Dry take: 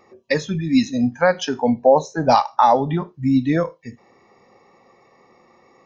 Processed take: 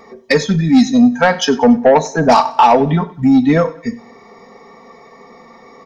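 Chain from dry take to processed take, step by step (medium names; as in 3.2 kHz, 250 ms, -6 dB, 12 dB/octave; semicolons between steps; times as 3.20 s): band-stop 2.7 kHz, Q 7.4; comb 4.4 ms, depth 67%; in parallel at +0.5 dB: compression, threshold -26 dBFS, peak gain reduction 17 dB; on the sum: saturation -7.5 dBFS, distortion -15 dB; feedback delay 94 ms, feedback 43%, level -20 dB; on a send at -17 dB: reverberation, pre-delay 3 ms; on the sum: trim +5 dB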